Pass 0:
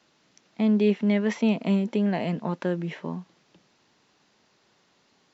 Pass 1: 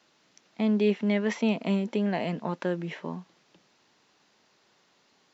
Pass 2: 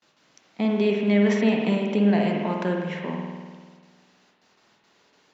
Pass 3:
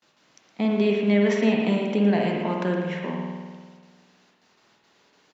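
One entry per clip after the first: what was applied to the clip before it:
low-shelf EQ 230 Hz −6.5 dB
noise gate with hold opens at −55 dBFS; spring reverb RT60 1.6 s, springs 49 ms, chirp 70 ms, DRR 0.5 dB; level +2.5 dB
single-tap delay 115 ms −11.5 dB

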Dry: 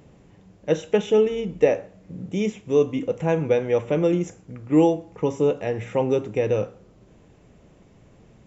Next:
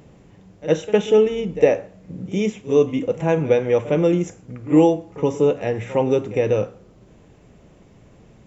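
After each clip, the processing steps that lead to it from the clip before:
backwards echo 58 ms −16.5 dB
level +3 dB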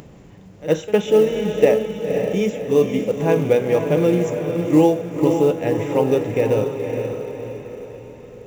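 feedback delay with all-pass diffusion 522 ms, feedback 48%, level −5.5 dB
floating-point word with a short mantissa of 4 bits
upward compression, threshold −37 dBFS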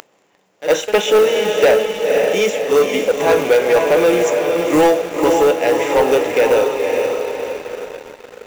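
high-pass filter 590 Hz 12 dB per octave
leveller curve on the samples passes 3
level +1.5 dB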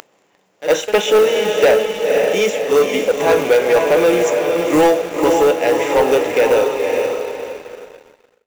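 fade-out on the ending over 1.49 s

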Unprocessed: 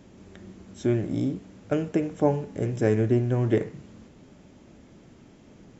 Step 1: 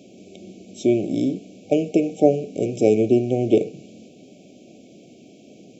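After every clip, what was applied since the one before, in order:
brick-wall band-stop 770–2,200 Hz
high-pass filter 230 Hz 12 dB per octave
level +7.5 dB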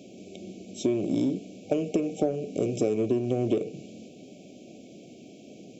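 in parallel at −12 dB: hard clipping −20 dBFS, distortion −5 dB
on the sum: downward compressor 10 to 1, threshold −19 dBFS, peak gain reduction 11.5 dB
level −2.5 dB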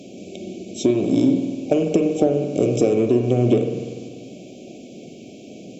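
spring reverb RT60 1.6 s, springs 49 ms, chirp 60 ms, DRR 6 dB
level +7.5 dB
Opus 96 kbit/s 48,000 Hz

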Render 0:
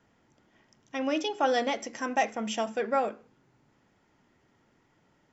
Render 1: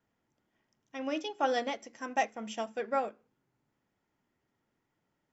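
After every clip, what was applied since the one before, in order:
expander for the loud parts 1.5 to 1, over −43 dBFS
level −2.5 dB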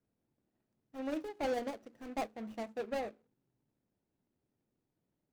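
running median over 41 samples
level −1.5 dB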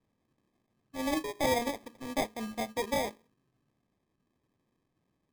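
decimation without filtering 31×
level +6 dB

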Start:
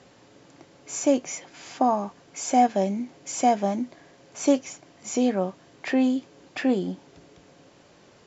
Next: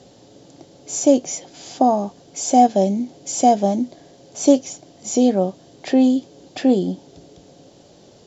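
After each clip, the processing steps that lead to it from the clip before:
flat-topped bell 1,600 Hz −11 dB
level +7 dB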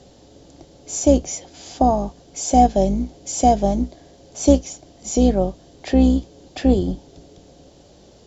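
sub-octave generator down 2 octaves, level −3 dB
level −1 dB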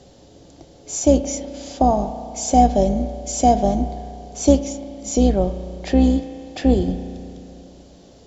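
convolution reverb RT60 2.6 s, pre-delay 33 ms, DRR 9.5 dB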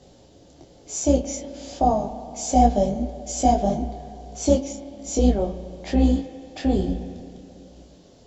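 micro pitch shift up and down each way 40 cents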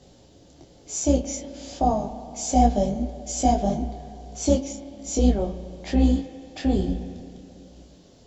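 parametric band 590 Hz −3 dB 1.6 octaves

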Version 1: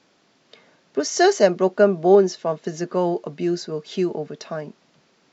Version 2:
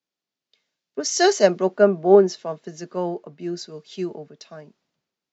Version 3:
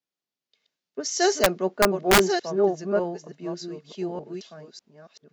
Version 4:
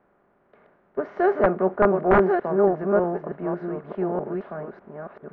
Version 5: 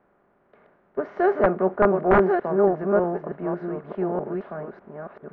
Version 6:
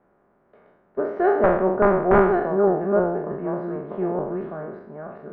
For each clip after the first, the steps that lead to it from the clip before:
multiband upward and downward expander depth 70%; level −3.5 dB
delay that plays each chunk backwards 599 ms, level −4 dB; wrap-around overflow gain 5 dB; level −4.5 dB
compressor on every frequency bin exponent 0.6; low-pass filter 1,500 Hz 24 dB per octave
no processing that can be heard
peak hold with a decay on every bin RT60 0.74 s; high-shelf EQ 2,000 Hz −8.5 dB

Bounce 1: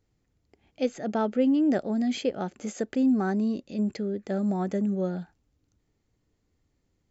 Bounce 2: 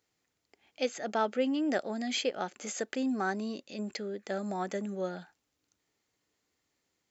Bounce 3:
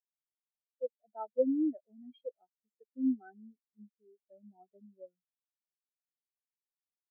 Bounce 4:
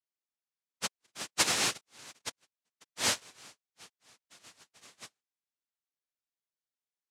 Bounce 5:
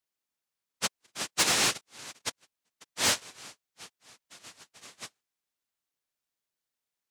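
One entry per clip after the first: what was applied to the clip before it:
high-pass filter 1,200 Hz 6 dB per octave; level +4.5 dB
every bin expanded away from the loudest bin 4 to 1; level −1 dB
cochlear-implant simulation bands 1
soft clipping −24 dBFS, distortion −12 dB; level +6 dB

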